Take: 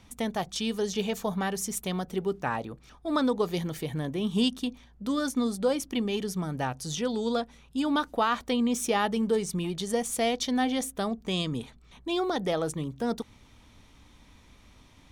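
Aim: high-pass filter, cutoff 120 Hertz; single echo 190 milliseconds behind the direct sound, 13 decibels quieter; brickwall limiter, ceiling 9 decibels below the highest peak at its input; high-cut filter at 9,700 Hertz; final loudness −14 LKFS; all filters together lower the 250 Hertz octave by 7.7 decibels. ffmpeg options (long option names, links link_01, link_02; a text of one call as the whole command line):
ffmpeg -i in.wav -af "highpass=120,lowpass=9700,equalizer=frequency=250:width_type=o:gain=-9,alimiter=limit=-23.5dB:level=0:latency=1,aecho=1:1:190:0.224,volume=21dB" out.wav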